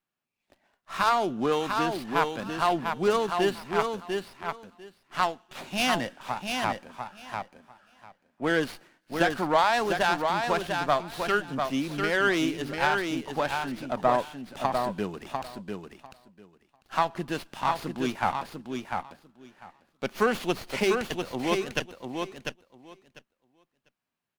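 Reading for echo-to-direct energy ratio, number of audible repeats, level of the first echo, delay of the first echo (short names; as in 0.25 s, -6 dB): -5.0 dB, 2, -5.0 dB, 0.697 s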